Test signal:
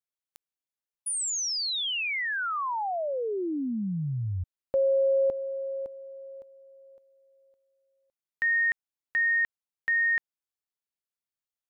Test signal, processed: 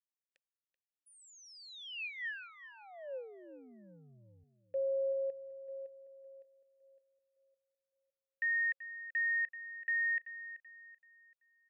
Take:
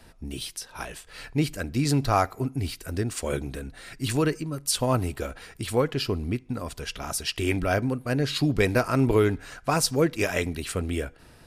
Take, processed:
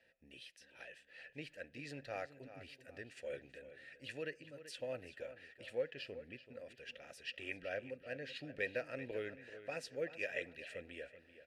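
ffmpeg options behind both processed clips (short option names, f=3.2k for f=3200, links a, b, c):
-filter_complex "[0:a]asplit=3[a][b][c];[a]bandpass=f=530:t=q:w=8,volume=0dB[d];[b]bandpass=f=1.84k:t=q:w=8,volume=-6dB[e];[c]bandpass=f=2.48k:t=q:w=8,volume=-9dB[f];[d][e][f]amix=inputs=3:normalize=0,equalizer=f=440:t=o:w=1.5:g=-10,asplit=2[g][h];[h]adelay=383,lowpass=f=4.9k:p=1,volume=-13dB,asplit=2[i][j];[j]adelay=383,lowpass=f=4.9k:p=1,volume=0.38,asplit=2[k][l];[l]adelay=383,lowpass=f=4.9k:p=1,volume=0.38,asplit=2[m][n];[n]adelay=383,lowpass=f=4.9k:p=1,volume=0.38[o];[g][i][k][m][o]amix=inputs=5:normalize=0,volume=-1dB"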